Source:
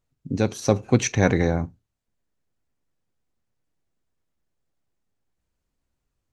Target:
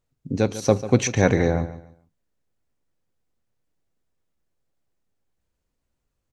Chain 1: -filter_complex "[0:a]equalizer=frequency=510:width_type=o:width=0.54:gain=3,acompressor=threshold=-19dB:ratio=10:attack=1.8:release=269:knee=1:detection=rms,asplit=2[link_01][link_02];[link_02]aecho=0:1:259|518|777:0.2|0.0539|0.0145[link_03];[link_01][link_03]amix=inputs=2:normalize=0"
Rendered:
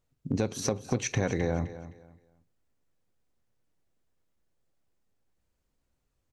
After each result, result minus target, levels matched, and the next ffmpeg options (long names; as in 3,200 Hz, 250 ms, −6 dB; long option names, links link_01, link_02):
echo 115 ms late; downward compressor: peak gain reduction +13.5 dB
-filter_complex "[0:a]equalizer=frequency=510:width_type=o:width=0.54:gain=3,acompressor=threshold=-19dB:ratio=10:attack=1.8:release=269:knee=1:detection=rms,asplit=2[link_01][link_02];[link_02]aecho=0:1:144|288|432:0.2|0.0539|0.0145[link_03];[link_01][link_03]amix=inputs=2:normalize=0"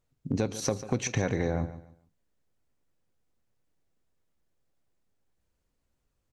downward compressor: peak gain reduction +13.5 dB
-filter_complex "[0:a]equalizer=frequency=510:width_type=o:width=0.54:gain=3,asplit=2[link_01][link_02];[link_02]aecho=0:1:144|288|432:0.2|0.0539|0.0145[link_03];[link_01][link_03]amix=inputs=2:normalize=0"